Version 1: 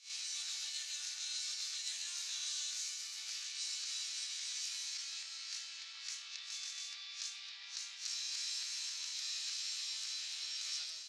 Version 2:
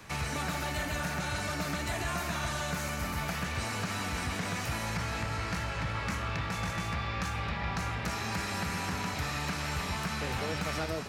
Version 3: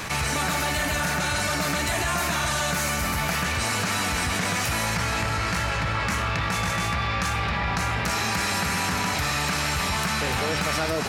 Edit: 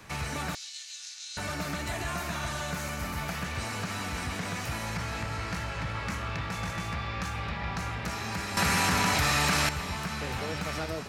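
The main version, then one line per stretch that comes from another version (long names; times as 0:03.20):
2
0:00.55–0:01.37: punch in from 1
0:08.57–0:09.69: punch in from 3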